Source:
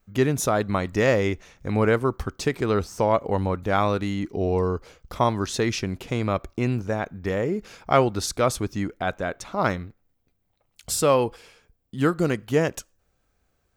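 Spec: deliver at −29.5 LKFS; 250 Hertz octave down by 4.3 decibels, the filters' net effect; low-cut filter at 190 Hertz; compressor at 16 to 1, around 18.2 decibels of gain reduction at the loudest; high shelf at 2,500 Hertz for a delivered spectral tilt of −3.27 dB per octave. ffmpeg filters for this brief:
ffmpeg -i in.wav -af "highpass=190,equalizer=frequency=250:width_type=o:gain=-4,highshelf=frequency=2500:gain=6,acompressor=threshold=-32dB:ratio=16,volume=8dB" out.wav

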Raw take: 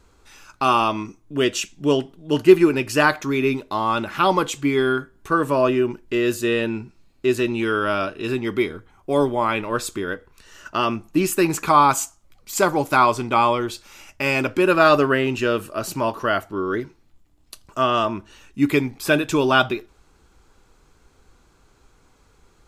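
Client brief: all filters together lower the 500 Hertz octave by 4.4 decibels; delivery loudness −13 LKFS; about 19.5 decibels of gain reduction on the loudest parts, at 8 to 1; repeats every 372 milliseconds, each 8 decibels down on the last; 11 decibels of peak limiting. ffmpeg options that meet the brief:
ffmpeg -i in.wav -af "equalizer=frequency=500:width_type=o:gain=-6.5,acompressor=threshold=-31dB:ratio=8,alimiter=level_in=5dB:limit=-24dB:level=0:latency=1,volume=-5dB,aecho=1:1:372|744|1116|1488|1860:0.398|0.159|0.0637|0.0255|0.0102,volume=25.5dB" out.wav

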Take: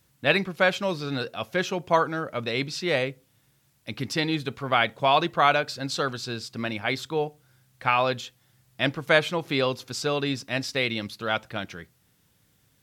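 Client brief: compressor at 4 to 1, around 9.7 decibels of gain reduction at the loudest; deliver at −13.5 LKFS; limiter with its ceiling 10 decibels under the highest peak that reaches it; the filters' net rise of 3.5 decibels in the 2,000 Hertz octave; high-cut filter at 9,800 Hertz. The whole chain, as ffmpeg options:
ffmpeg -i in.wav -af "lowpass=9800,equalizer=frequency=2000:width_type=o:gain=4.5,acompressor=threshold=-25dB:ratio=4,volume=18.5dB,alimiter=limit=-1dB:level=0:latency=1" out.wav

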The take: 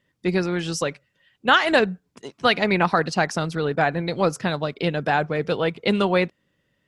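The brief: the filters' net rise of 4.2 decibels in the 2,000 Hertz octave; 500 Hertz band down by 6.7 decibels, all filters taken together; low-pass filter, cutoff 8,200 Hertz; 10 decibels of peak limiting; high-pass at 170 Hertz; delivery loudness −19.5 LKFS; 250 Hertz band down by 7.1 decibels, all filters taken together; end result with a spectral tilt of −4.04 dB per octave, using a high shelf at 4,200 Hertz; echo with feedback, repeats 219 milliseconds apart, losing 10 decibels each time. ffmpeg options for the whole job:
ffmpeg -i in.wav -af "highpass=170,lowpass=8200,equalizer=frequency=250:width_type=o:gain=-6.5,equalizer=frequency=500:width_type=o:gain=-7,equalizer=frequency=2000:width_type=o:gain=7,highshelf=frequency=4200:gain=-4,alimiter=limit=-12dB:level=0:latency=1,aecho=1:1:219|438|657|876:0.316|0.101|0.0324|0.0104,volume=6dB" out.wav

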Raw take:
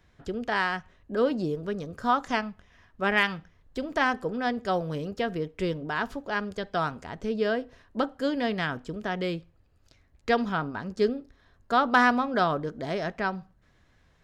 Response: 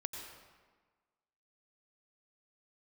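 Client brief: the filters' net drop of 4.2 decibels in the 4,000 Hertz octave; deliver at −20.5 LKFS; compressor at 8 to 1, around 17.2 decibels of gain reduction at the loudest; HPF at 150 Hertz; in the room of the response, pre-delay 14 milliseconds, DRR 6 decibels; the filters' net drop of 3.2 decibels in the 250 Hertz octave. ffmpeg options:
-filter_complex "[0:a]highpass=150,equalizer=frequency=250:width_type=o:gain=-3,equalizer=frequency=4000:width_type=o:gain=-6,acompressor=threshold=-35dB:ratio=8,asplit=2[link_01][link_02];[1:a]atrim=start_sample=2205,adelay=14[link_03];[link_02][link_03]afir=irnorm=-1:irlink=0,volume=-5.5dB[link_04];[link_01][link_04]amix=inputs=2:normalize=0,volume=19dB"

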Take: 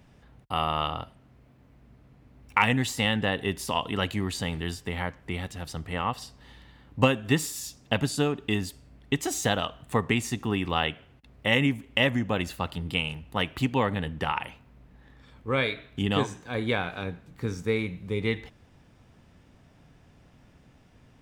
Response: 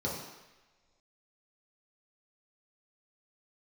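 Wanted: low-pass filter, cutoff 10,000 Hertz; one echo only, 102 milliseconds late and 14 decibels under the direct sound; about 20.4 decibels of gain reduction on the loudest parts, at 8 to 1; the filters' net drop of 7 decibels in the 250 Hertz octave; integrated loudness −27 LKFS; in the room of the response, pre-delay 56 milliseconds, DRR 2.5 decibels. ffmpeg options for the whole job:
-filter_complex "[0:a]lowpass=10000,equalizer=frequency=250:width_type=o:gain=-9,acompressor=threshold=-40dB:ratio=8,aecho=1:1:102:0.2,asplit=2[link_01][link_02];[1:a]atrim=start_sample=2205,adelay=56[link_03];[link_02][link_03]afir=irnorm=-1:irlink=0,volume=-8.5dB[link_04];[link_01][link_04]amix=inputs=2:normalize=0,volume=14.5dB"

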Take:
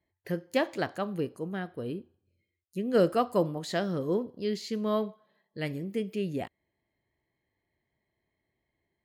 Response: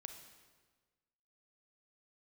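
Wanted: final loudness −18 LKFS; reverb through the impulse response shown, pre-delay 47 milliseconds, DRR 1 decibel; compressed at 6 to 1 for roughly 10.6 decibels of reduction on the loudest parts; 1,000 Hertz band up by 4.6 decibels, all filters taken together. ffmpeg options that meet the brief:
-filter_complex "[0:a]equalizer=frequency=1000:width_type=o:gain=6.5,acompressor=threshold=-29dB:ratio=6,asplit=2[link_01][link_02];[1:a]atrim=start_sample=2205,adelay=47[link_03];[link_02][link_03]afir=irnorm=-1:irlink=0,volume=4dB[link_04];[link_01][link_04]amix=inputs=2:normalize=0,volume=15dB"

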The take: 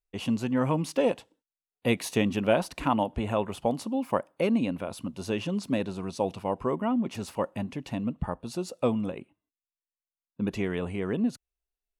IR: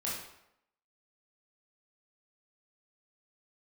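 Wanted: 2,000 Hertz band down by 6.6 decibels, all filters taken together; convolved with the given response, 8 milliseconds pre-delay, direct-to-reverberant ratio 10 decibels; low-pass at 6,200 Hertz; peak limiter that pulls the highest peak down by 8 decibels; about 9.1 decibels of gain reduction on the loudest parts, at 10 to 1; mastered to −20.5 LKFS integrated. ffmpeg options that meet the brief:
-filter_complex "[0:a]lowpass=6200,equalizer=frequency=2000:width_type=o:gain=-9,acompressor=threshold=-29dB:ratio=10,alimiter=level_in=1dB:limit=-24dB:level=0:latency=1,volume=-1dB,asplit=2[link_01][link_02];[1:a]atrim=start_sample=2205,adelay=8[link_03];[link_02][link_03]afir=irnorm=-1:irlink=0,volume=-14dB[link_04];[link_01][link_04]amix=inputs=2:normalize=0,volume=16dB"

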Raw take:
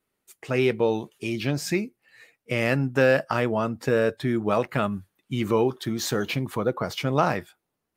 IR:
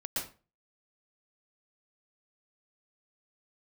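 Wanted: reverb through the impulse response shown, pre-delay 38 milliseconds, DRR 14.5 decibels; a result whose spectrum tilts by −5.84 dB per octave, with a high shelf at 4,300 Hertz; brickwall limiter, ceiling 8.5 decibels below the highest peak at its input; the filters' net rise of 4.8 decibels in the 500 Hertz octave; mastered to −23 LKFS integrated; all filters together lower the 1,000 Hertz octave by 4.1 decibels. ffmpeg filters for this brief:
-filter_complex "[0:a]equalizer=frequency=500:width_type=o:gain=7.5,equalizer=frequency=1000:width_type=o:gain=-8.5,highshelf=frequency=4300:gain=-3,alimiter=limit=-15.5dB:level=0:latency=1,asplit=2[link_01][link_02];[1:a]atrim=start_sample=2205,adelay=38[link_03];[link_02][link_03]afir=irnorm=-1:irlink=0,volume=-18dB[link_04];[link_01][link_04]amix=inputs=2:normalize=0,volume=3.5dB"

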